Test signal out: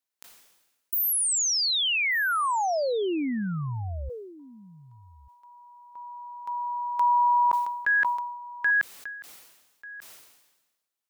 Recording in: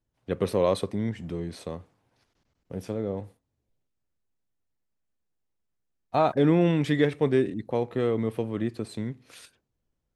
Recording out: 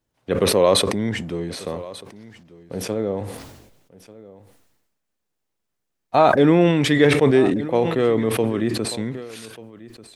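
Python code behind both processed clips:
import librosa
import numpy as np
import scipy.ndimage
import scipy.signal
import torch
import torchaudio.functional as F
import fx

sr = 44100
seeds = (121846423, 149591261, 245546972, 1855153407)

y = fx.low_shelf(x, sr, hz=160.0, db=-9.5)
y = y + 10.0 ** (-19.5 / 20.0) * np.pad(y, (int(1190 * sr / 1000.0), 0))[:len(y)]
y = fx.sustainer(y, sr, db_per_s=50.0)
y = F.gain(torch.from_numpy(y), 8.0).numpy()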